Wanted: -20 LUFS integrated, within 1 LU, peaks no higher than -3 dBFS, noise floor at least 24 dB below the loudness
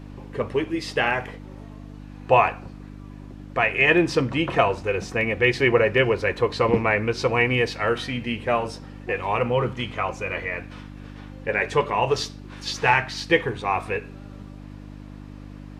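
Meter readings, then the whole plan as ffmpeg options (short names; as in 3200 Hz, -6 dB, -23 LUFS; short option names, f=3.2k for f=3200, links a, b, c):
hum 50 Hz; harmonics up to 300 Hz; hum level -37 dBFS; loudness -23.0 LUFS; peak -3.0 dBFS; loudness target -20.0 LUFS
-> -af "bandreject=f=50:t=h:w=4,bandreject=f=100:t=h:w=4,bandreject=f=150:t=h:w=4,bandreject=f=200:t=h:w=4,bandreject=f=250:t=h:w=4,bandreject=f=300:t=h:w=4"
-af "volume=3dB,alimiter=limit=-3dB:level=0:latency=1"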